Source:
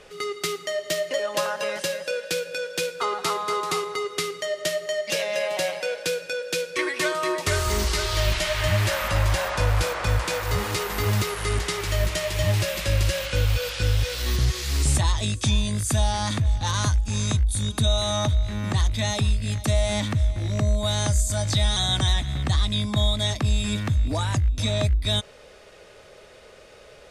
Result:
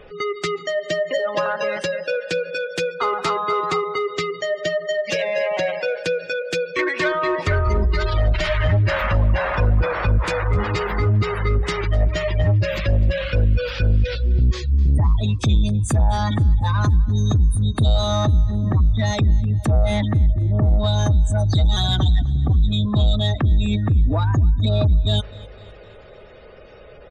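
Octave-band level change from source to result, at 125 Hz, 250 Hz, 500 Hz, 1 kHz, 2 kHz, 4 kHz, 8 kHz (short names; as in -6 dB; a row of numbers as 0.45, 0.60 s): +6.0, +5.5, +4.0, +3.5, +2.5, -2.5, -9.0 dB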